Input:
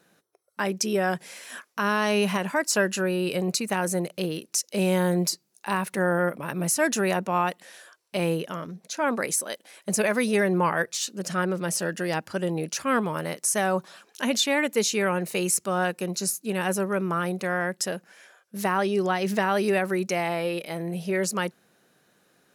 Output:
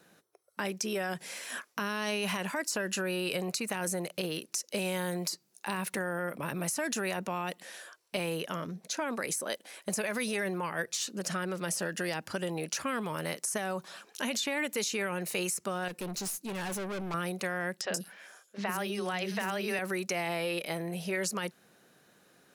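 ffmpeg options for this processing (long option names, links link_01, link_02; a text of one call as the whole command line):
ffmpeg -i in.wav -filter_complex "[0:a]asettb=1/sr,asplit=3[link_01][link_02][link_03];[link_01]atrim=end=15.884[link_04];[link_02]atrim=start=15.88:end=17.14,asetpts=PTS-STARTPTS,afade=type=in:duration=0.004:curve=qsin,afade=type=out:start_time=1.256:duration=0.004:curve=qsin,aeval=exprs='(tanh(44.7*val(0)+0.15)-tanh(0.15))/44.7':channel_layout=same[link_05];[link_03]atrim=start=17.136[link_06];[link_04][link_05]acrossfade=duration=0.004:curve1=hsin:curve2=qsin[link_07];[link_07][link_06]acrossfade=duration=0.004:curve1=qsin:curve2=hsin,asettb=1/sr,asplit=3[link_08][link_09][link_10];[link_08]atrim=end=17.814[link_11];[link_09]atrim=start=17.81:end=19.79,asetpts=PTS-STARTPTS,afade=type=in:duration=0.004:curve=qsin,afade=type=out:start_time=1.976:duration=0.004:curve=qsin,acrossover=split=400|4700[link_12][link_13][link_14];[link_12]adelay=40[link_15];[link_14]adelay=130[link_16];[link_15][link_13][link_16]amix=inputs=3:normalize=0,atrim=end_sample=87318[link_17];[link_10]atrim=start=19.786[link_18];[link_11][link_17]acrossfade=duration=0.004:curve1=hsin:curve2=qsin[link_19];[link_19][link_18]acrossfade=duration=0.004:curve1=qsin:curve2=hsin,alimiter=limit=-18.5dB:level=0:latency=1:release=41,acrossover=split=630|2000[link_20][link_21][link_22];[link_20]acompressor=threshold=-37dB:ratio=4[link_23];[link_21]acompressor=threshold=-39dB:ratio=4[link_24];[link_22]acompressor=threshold=-33dB:ratio=4[link_25];[link_23][link_24][link_25]amix=inputs=3:normalize=0,volume=1dB" out.wav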